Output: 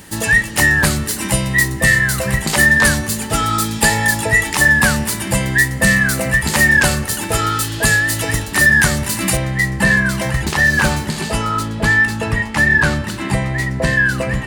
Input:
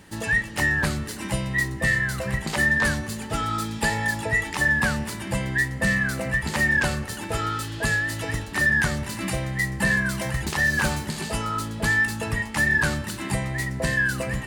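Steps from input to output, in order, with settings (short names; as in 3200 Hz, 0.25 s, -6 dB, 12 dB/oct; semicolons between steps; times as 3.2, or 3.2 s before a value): high shelf 6600 Hz +11.5 dB, from 9.37 s -2.5 dB, from 11.63 s -8.5 dB; gain +8.5 dB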